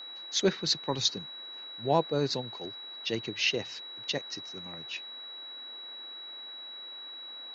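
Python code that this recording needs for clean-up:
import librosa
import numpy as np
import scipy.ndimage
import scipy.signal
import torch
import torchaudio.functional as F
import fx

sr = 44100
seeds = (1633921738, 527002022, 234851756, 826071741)

y = fx.notch(x, sr, hz=3900.0, q=30.0)
y = fx.noise_reduce(y, sr, print_start_s=6.89, print_end_s=7.39, reduce_db=30.0)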